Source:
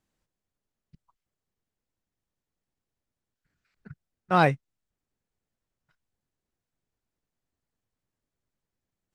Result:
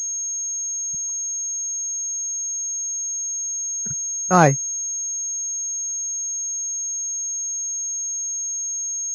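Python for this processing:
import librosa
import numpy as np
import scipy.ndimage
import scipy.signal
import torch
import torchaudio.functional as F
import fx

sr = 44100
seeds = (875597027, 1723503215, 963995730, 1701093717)

y = fx.air_absorb(x, sr, metres=420.0)
y = fx.pwm(y, sr, carrier_hz=6500.0)
y = y * librosa.db_to_amplitude(8.0)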